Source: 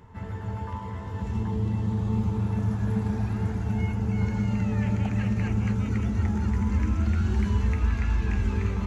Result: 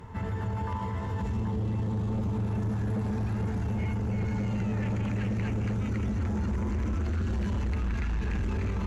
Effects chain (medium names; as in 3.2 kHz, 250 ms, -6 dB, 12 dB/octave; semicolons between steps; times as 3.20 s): Chebyshev shaper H 5 -9 dB, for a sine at -13 dBFS; peak limiter -22 dBFS, peak gain reduction 7.5 dB; trim -3 dB